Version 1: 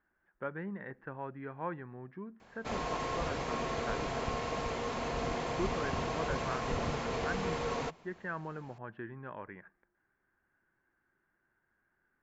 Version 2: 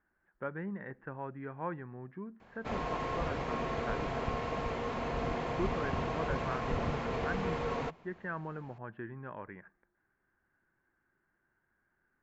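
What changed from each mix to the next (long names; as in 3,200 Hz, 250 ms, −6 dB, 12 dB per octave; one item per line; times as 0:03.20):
master: add bass and treble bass +2 dB, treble −11 dB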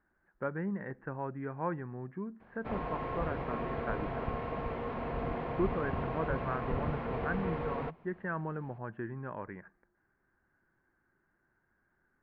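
speech +4.5 dB
master: add high-frequency loss of the air 410 metres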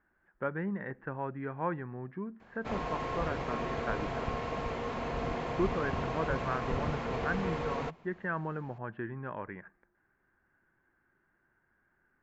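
master: remove high-frequency loss of the air 410 metres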